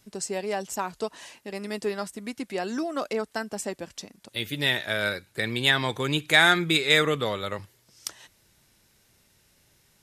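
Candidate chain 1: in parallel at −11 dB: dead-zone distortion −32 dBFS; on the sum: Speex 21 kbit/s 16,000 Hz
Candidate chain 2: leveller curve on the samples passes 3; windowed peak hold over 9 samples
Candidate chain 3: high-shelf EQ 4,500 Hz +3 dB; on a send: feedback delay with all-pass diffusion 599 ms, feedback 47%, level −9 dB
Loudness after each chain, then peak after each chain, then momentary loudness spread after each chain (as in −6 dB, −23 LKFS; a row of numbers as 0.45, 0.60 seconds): −24.5, −19.0, −25.0 LKFS; −2.0, −4.0, −3.5 dBFS; 19, 15, 18 LU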